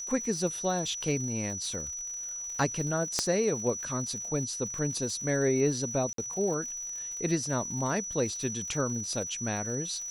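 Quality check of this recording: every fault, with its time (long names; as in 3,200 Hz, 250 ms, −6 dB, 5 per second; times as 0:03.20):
surface crackle 120 per second −39 dBFS
whistle 5,900 Hz −35 dBFS
0:03.19: click −12 dBFS
0:06.13–0:06.18: drop-out 53 ms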